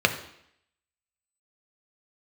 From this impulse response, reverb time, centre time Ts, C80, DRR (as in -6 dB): 0.70 s, 10 ms, 14.0 dB, 5.5 dB